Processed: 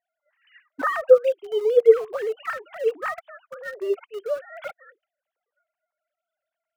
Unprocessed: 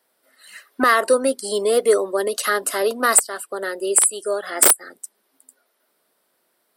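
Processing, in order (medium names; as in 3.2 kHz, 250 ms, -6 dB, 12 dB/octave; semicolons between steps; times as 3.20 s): formants replaced by sine waves; in parallel at -10 dB: small samples zeroed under -26 dBFS; on the sum: trim -5.5 dB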